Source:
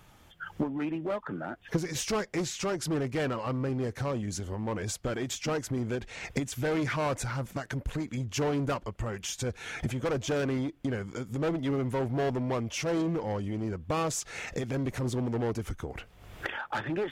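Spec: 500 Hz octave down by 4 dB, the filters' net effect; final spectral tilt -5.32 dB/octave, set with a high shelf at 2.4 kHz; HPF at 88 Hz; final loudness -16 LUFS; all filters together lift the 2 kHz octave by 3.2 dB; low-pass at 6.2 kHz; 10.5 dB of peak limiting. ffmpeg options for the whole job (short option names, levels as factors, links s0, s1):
-af "highpass=88,lowpass=6200,equalizer=f=500:t=o:g=-5,equalizer=f=2000:t=o:g=8,highshelf=f=2400:g=-7.5,volume=10,alimiter=limit=0.501:level=0:latency=1"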